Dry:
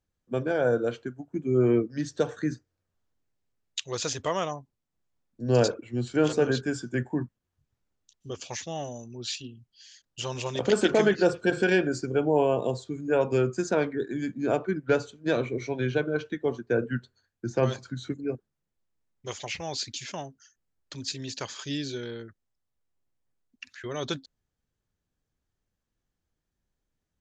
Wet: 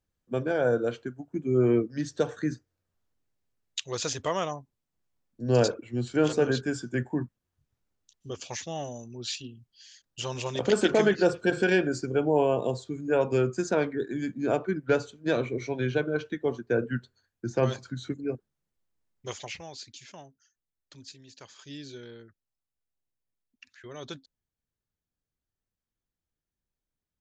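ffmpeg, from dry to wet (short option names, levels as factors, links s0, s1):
-af "volume=2.51,afade=t=out:st=19.29:d=0.43:silence=0.316228,afade=t=out:st=20.96:d=0.28:silence=0.473151,afade=t=in:st=21.24:d=0.7:silence=0.375837"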